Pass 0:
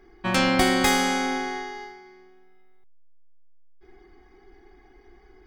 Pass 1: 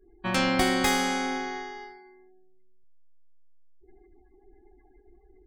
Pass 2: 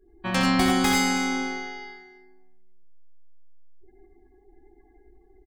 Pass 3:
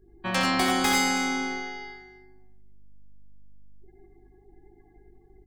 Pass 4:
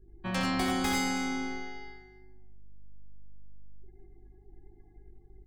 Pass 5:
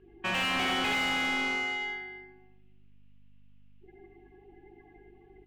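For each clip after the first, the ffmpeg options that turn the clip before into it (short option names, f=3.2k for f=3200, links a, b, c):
-af "afftdn=nr=36:nf=-50,volume=-3.5dB"
-af "aecho=1:1:64|87|102|322:0.355|0.531|0.501|0.15"
-filter_complex "[0:a]acrossover=split=380|1500[a][b][c];[a]asoftclip=type=tanh:threshold=-29.5dB[d];[d][b][c]amix=inputs=3:normalize=0,aeval=exprs='val(0)+0.001*(sin(2*PI*50*n/s)+sin(2*PI*2*50*n/s)/2+sin(2*PI*3*50*n/s)/3+sin(2*PI*4*50*n/s)/4+sin(2*PI*5*50*n/s)/5)':c=same"
-af "lowshelf=f=210:g=12,volume=-8dB"
-filter_complex "[0:a]lowpass=f=2.8k:t=q:w=5.6,asplit=2[a][b];[b]highpass=f=720:p=1,volume=28dB,asoftclip=type=tanh:threshold=-12dB[c];[a][c]amix=inputs=2:normalize=0,lowpass=f=2.1k:p=1,volume=-6dB,volume=-8dB"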